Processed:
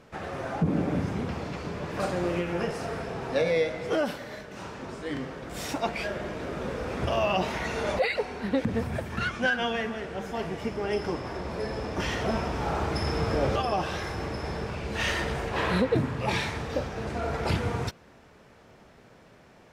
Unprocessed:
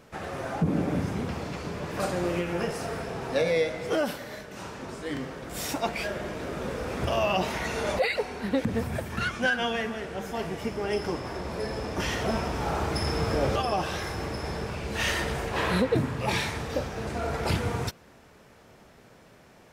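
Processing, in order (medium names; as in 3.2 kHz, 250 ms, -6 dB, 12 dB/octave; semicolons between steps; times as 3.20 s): treble shelf 8.6 kHz -11.5 dB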